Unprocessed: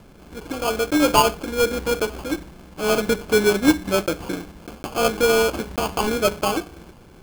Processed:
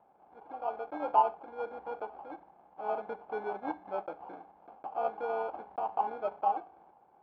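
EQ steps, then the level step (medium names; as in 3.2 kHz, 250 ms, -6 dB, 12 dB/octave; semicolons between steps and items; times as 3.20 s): band-pass filter 800 Hz, Q 7.6; distance through air 280 m; +1.0 dB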